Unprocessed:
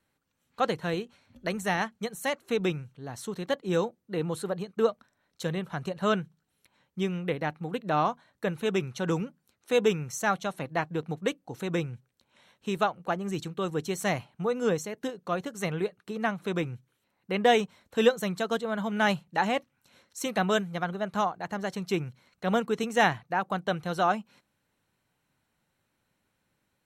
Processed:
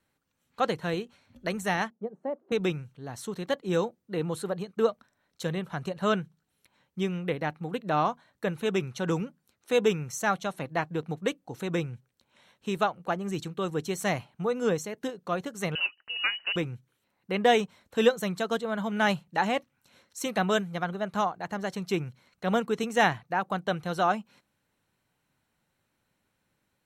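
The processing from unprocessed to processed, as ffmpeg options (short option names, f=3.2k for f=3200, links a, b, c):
-filter_complex "[0:a]asettb=1/sr,asplit=3[a][b][c];[a]atrim=end=1.904[d];[b]atrim=start=1.9:end=2.52,asetpts=PTS-STARTPTS,afade=t=in:d=0.004:c=qsin,afade=t=out:st=0.616:d=0.004:c=qsin,asuperpass=centerf=390:order=4:qfactor=0.78[e];[c]atrim=start=2.516[f];[d][e]acrossfade=d=0.004:c1=hsin:c2=qsin[g];[g][f]acrossfade=d=0.004:c1=qsin:c2=hsin,asettb=1/sr,asplit=3[h][i][j];[h]atrim=end=15.754[k];[i]atrim=start=15.75:end=16.56,asetpts=PTS-STARTPTS,afade=t=in:d=0.004:c=qsin,afade=t=out:st=0.806:d=0.004:c=qsin,lowpass=f=2.6k:t=q:w=0.5098,lowpass=f=2.6k:t=q:w=0.6013,lowpass=f=2.6k:t=q:w=0.9,lowpass=f=2.6k:t=q:w=2.563,afreqshift=-3100[l];[j]atrim=start=16.556[m];[k][l]acrossfade=d=0.004:c1=hsin:c2=qsin[n];[n][m]acrossfade=d=0.004:c1=qsin:c2=hsin"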